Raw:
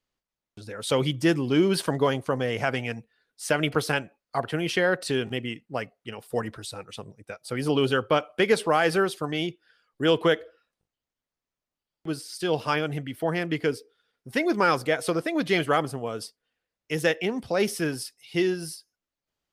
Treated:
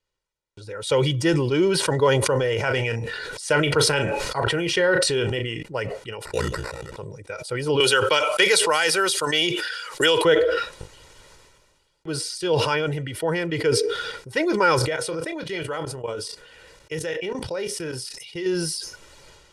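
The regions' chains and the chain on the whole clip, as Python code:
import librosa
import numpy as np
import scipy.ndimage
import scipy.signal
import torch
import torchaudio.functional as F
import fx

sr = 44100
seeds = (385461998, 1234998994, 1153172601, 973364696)

y = fx.chain(x, sr, fx.doubler(ms=35.0, db=-13.5),
    fx.sustainer(db_per_s=22.0), at=(2.23, 5.63))
y = fx.chain(y, sr, fx.bass_treble(bass_db=3, treble_db=4),
    fx.ring_mod(carrier_hz=30.0),
    fx.sample_hold(seeds[0], rate_hz=3200.0, jitter_pct=0), at=(6.25, 6.97))
y = fx.chain(y, sr, fx.tilt_eq(slope=4.0),
    fx.band_squash(depth_pct=100), at=(7.8, 10.25))
y = fx.chain(y, sr, fx.doubler(ms=31.0, db=-12.0),
    fx.level_steps(step_db=15), at=(14.79, 18.46))
y = scipy.signal.sosfilt(scipy.signal.butter(4, 10000.0, 'lowpass', fs=sr, output='sos'), y)
y = y + 0.67 * np.pad(y, (int(2.1 * sr / 1000.0), 0))[:len(y)]
y = fx.sustainer(y, sr, db_per_s=34.0)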